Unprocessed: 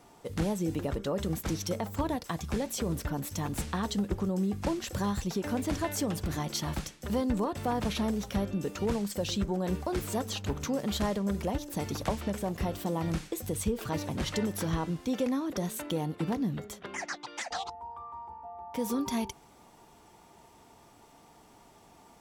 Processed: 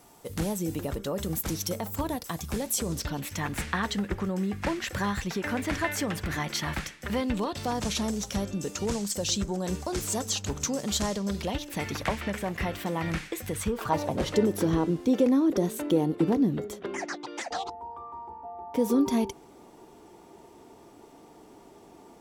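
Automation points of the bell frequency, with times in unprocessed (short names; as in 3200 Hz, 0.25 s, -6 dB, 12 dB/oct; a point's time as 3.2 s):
bell +12 dB 1.3 oct
2.62 s 15000 Hz
3.36 s 1900 Hz
7.1 s 1900 Hz
7.82 s 6800 Hz
11.08 s 6800 Hz
11.83 s 2000 Hz
13.49 s 2000 Hz
14.39 s 360 Hz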